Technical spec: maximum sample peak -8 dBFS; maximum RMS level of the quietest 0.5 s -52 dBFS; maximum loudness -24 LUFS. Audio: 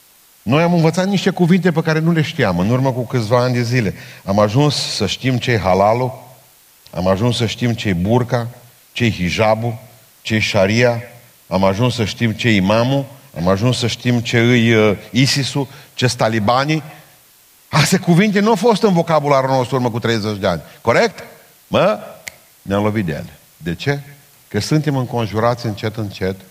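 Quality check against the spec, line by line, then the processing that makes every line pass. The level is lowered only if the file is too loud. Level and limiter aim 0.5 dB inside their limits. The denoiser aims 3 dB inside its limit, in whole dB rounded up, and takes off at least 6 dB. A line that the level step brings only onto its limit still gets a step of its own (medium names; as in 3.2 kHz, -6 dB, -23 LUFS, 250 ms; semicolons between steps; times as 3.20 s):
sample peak -2.0 dBFS: fail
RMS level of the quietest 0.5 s -49 dBFS: fail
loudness -16.5 LUFS: fail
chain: trim -8 dB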